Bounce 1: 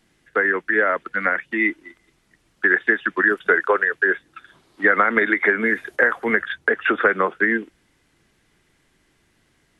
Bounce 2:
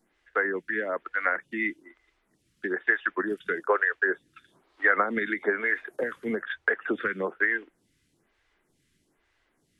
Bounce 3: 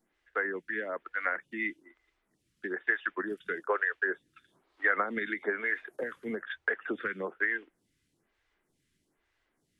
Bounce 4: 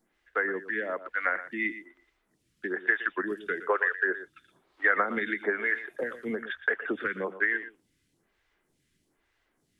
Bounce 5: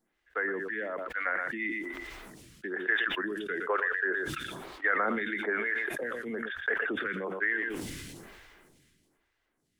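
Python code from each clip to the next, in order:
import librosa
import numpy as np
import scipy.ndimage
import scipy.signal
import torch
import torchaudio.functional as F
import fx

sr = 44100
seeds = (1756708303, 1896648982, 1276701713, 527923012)

y1 = fx.stagger_phaser(x, sr, hz=1.1)
y1 = y1 * librosa.db_to_amplitude(-4.5)
y2 = fx.dynamic_eq(y1, sr, hz=3100.0, q=1.2, threshold_db=-38.0, ratio=4.0, max_db=4)
y2 = y2 * librosa.db_to_amplitude(-6.0)
y3 = y2 + 10.0 ** (-13.5 / 20.0) * np.pad(y2, (int(118 * sr / 1000.0), 0))[:len(y2)]
y3 = y3 * librosa.db_to_amplitude(3.0)
y4 = fx.sustainer(y3, sr, db_per_s=27.0)
y4 = y4 * librosa.db_to_amplitude(-4.5)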